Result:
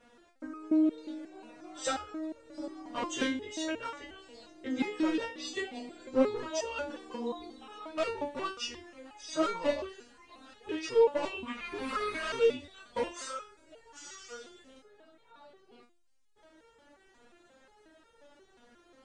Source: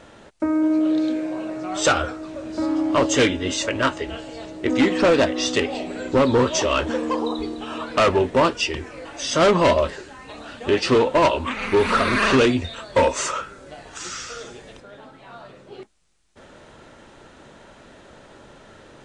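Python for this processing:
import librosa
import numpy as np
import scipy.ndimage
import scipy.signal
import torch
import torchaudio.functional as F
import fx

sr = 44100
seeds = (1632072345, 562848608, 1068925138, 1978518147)

y = fx.peak_eq(x, sr, hz=440.0, db=-11.5, octaves=0.25, at=(8.16, 9.35))
y = fx.resonator_held(y, sr, hz=5.6, low_hz=240.0, high_hz=460.0)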